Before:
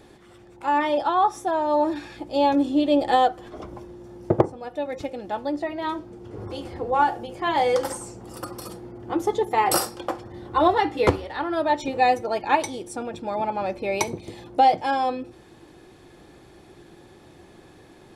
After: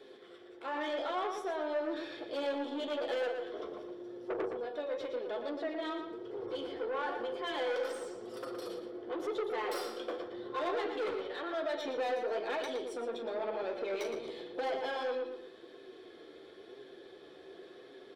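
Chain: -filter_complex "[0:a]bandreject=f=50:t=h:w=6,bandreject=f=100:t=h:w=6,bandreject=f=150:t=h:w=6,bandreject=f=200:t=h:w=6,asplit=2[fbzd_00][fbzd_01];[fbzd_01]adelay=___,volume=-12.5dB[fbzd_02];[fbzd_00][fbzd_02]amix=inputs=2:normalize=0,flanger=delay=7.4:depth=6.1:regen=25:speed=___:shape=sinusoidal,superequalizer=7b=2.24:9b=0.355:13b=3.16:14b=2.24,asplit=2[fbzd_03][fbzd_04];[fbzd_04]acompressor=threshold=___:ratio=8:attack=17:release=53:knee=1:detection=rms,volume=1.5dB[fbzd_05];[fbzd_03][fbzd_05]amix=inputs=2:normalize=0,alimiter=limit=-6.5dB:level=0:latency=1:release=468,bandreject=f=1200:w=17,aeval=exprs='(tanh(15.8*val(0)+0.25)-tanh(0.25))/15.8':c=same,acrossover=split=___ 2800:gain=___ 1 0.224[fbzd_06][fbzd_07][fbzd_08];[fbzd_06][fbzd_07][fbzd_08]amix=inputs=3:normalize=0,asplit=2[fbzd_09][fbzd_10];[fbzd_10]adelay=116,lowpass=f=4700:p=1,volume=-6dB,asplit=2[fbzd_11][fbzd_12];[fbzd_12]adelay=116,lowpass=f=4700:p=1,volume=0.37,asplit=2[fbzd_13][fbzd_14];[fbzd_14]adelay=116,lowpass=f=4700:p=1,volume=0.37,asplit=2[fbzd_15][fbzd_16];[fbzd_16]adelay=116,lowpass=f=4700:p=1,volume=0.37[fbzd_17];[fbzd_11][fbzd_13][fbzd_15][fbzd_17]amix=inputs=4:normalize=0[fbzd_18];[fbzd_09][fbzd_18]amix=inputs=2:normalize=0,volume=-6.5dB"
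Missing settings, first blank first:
39, 0.95, -36dB, 280, 0.0794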